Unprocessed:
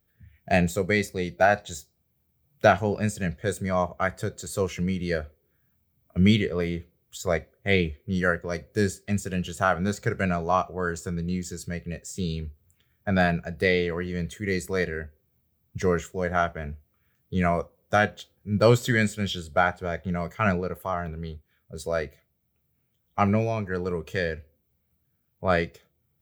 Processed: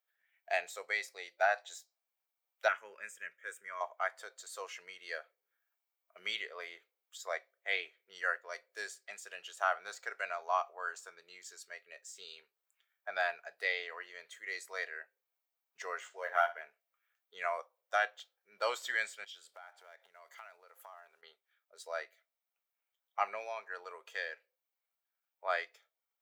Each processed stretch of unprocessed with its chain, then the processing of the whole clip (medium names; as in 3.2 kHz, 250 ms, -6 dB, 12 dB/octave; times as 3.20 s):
2.68–3.81 s: bass shelf 120 Hz +8.5 dB + static phaser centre 1.8 kHz, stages 4
16.00–16.61 s: doubling 13 ms -2.5 dB + flutter echo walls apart 10.2 m, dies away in 0.24 s + decimation joined by straight lines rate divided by 3×
19.24–21.23 s: block-companded coder 7-bit + compression 12:1, threshold -38 dBFS + treble shelf 4.5 kHz +5 dB
whole clip: high-pass 700 Hz 24 dB/octave; treble shelf 8.3 kHz -9.5 dB; trim -7 dB